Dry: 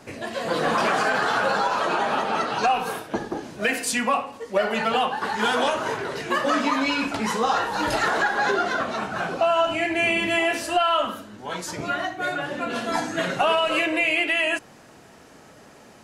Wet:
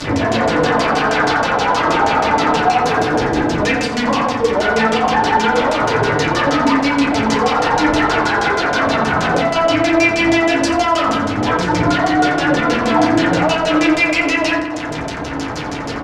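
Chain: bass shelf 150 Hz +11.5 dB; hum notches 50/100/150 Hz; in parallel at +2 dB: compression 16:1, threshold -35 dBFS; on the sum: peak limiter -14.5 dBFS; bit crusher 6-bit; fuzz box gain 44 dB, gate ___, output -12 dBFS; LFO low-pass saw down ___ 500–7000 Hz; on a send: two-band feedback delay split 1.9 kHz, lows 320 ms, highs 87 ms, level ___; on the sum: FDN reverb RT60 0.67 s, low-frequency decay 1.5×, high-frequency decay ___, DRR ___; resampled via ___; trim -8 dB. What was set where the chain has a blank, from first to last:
-51 dBFS, 6.3 Hz, -14 dB, 0.3×, -2 dB, 32 kHz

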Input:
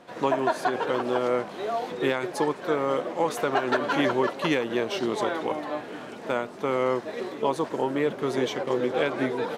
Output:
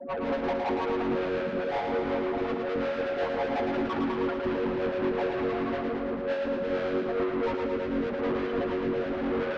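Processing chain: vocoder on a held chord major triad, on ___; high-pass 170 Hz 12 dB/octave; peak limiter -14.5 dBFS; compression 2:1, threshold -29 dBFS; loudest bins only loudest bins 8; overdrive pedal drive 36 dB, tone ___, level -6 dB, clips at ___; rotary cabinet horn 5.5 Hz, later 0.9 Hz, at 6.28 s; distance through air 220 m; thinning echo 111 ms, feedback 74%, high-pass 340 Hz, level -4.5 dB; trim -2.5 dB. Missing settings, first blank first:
F#3, 5.5 kHz, -18.5 dBFS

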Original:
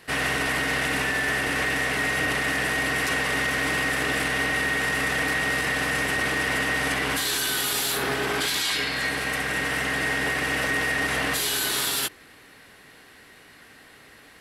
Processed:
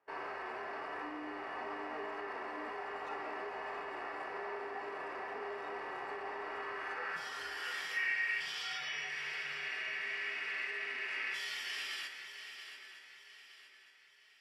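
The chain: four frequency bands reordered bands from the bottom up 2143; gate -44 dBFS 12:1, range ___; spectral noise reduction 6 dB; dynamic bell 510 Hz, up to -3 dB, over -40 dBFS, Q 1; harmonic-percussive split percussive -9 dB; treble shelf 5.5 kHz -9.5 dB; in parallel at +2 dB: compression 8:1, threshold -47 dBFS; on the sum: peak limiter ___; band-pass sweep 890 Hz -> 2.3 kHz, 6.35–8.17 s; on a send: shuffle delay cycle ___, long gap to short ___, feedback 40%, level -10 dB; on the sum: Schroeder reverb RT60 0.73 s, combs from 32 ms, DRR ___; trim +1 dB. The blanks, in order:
-17 dB, -23.5 dBFS, 915 ms, 3:1, 17 dB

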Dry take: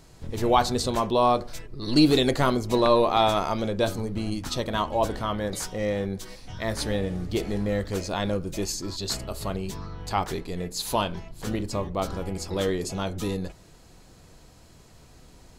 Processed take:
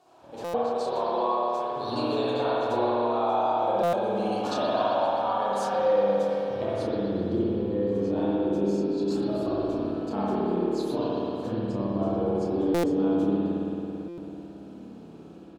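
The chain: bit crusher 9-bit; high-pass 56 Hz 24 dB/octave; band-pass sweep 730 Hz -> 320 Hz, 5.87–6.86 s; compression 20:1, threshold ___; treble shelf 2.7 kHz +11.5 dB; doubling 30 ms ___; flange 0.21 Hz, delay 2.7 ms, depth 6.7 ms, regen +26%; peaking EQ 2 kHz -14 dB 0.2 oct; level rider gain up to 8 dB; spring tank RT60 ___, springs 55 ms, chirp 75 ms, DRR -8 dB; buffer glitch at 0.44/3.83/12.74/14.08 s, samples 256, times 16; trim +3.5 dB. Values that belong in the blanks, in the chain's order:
-38 dBFS, -5 dB, 3.2 s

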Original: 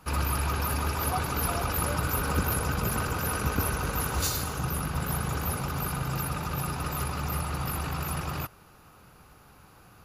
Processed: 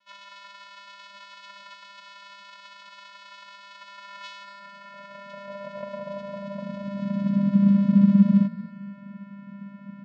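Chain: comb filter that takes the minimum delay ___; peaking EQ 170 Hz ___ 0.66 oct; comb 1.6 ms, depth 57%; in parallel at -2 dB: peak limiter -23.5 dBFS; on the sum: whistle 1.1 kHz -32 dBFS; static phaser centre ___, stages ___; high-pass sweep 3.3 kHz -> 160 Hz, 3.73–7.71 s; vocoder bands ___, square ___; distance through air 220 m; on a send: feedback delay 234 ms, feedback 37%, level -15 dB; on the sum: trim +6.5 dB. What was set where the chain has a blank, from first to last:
5.8 ms, +3 dB, 320 Hz, 6, 4, 199 Hz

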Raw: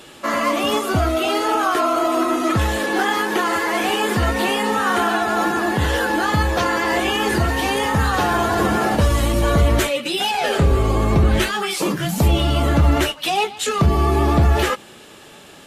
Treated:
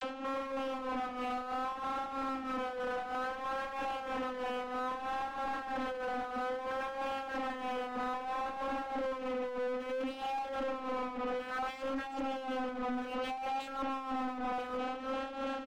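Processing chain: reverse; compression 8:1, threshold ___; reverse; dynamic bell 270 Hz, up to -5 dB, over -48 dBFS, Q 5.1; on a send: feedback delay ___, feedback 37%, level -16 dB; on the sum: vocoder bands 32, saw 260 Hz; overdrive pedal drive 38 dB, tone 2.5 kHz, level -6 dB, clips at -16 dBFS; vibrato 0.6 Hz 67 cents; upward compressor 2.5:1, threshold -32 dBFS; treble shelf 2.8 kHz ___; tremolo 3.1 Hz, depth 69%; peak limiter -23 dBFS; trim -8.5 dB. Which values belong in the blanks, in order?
-24 dBFS, 351 ms, -11.5 dB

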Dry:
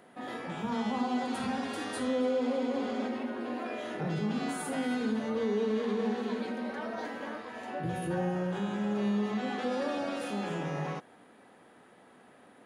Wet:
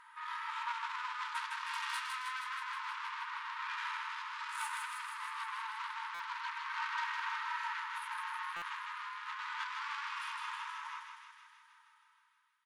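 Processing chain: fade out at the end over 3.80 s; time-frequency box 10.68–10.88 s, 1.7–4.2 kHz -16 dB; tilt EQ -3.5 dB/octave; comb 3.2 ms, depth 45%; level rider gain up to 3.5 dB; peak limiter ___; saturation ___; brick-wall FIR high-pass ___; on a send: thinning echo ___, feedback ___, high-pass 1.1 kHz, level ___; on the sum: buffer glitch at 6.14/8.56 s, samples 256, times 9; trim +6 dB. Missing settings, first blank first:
-20.5 dBFS, -34 dBFS, 870 Hz, 158 ms, 71%, -4 dB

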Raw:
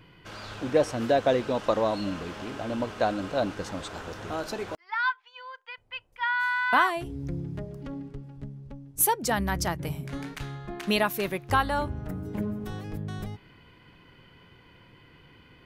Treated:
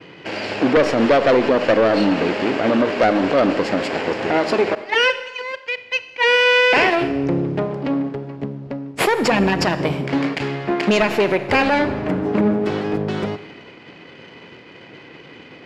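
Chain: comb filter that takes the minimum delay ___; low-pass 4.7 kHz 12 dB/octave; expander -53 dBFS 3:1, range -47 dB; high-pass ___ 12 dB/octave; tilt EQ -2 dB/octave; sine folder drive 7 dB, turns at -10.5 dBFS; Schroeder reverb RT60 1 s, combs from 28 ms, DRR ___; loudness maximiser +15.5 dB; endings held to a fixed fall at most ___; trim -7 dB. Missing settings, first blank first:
0.41 ms, 360 Hz, 13.5 dB, 510 dB/s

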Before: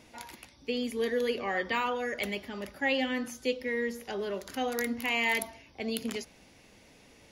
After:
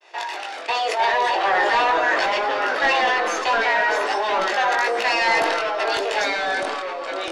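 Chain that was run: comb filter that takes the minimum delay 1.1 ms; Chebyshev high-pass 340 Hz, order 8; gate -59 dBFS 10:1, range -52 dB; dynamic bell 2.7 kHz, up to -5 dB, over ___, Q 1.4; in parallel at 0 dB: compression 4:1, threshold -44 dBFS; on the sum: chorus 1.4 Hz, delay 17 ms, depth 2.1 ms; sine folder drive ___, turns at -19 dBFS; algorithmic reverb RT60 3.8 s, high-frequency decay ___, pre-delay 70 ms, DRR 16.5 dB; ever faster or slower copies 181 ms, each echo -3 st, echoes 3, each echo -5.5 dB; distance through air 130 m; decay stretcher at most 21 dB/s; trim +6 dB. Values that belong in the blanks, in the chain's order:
-45 dBFS, 8 dB, 0.85×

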